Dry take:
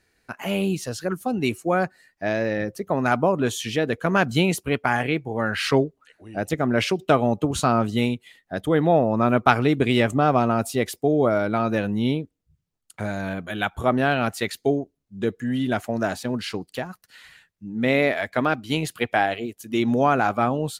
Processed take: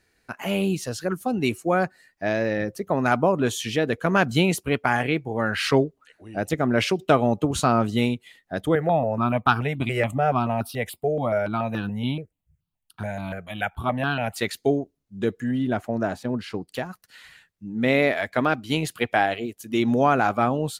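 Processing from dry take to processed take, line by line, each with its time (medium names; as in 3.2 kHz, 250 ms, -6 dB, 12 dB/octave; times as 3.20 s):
8.75–14.36 s: stepped phaser 7 Hz 990–2100 Hz
15.51–16.69 s: treble shelf 2 kHz -10.5 dB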